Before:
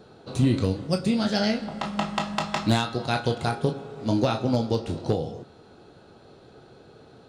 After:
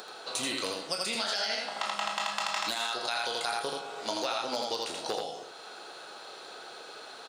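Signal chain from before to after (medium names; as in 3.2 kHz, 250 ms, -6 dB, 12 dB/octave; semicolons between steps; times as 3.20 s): high-pass 890 Hz 12 dB/octave; in parallel at -1 dB: upward compressor, threshold -36 dBFS; on the sum: treble shelf 5 kHz +6 dB; delay 82 ms -4 dB; peak limiter -14 dBFS, peak gain reduction 9.5 dB; compression, threshold -26 dBFS, peak gain reduction 6 dB; trim -1.5 dB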